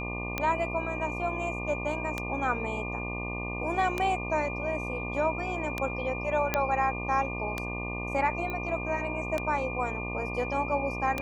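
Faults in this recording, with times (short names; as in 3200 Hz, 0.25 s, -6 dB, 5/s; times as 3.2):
buzz 60 Hz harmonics 20 -36 dBFS
tick 33 1/3 rpm -14 dBFS
tone 2400 Hz -36 dBFS
6.54 pop -10 dBFS
8.5 pop -22 dBFS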